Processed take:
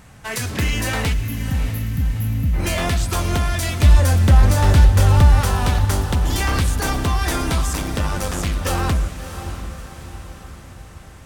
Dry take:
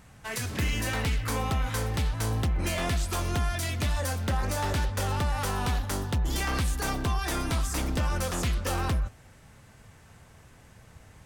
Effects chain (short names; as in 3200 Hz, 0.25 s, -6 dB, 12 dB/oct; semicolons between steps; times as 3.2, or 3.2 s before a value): 1.13–2.54 spectral gain 280–11000 Hz -26 dB; 3.83–5.41 low shelf 180 Hz +12 dB; 7.73–8.61 AM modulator 99 Hz, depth 45%; diffused feedback echo 0.641 s, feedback 52%, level -10.5 dB; gain +7.5 dB